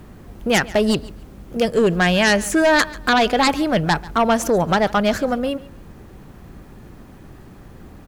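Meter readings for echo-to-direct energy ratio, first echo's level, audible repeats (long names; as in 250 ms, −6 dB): −20.0 dB, −20.0 dB, 2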